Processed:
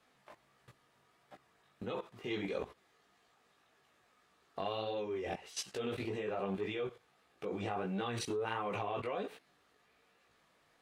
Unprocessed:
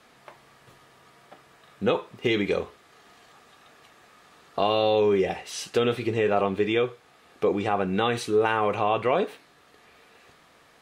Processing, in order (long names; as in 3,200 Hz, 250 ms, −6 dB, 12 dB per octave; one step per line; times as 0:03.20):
output level in coarse steps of 17 dB
multi-voice chorus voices 2, 1.5 Hz, delay 18 ms, depth 3 ms
saturating transformer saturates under 580 Hz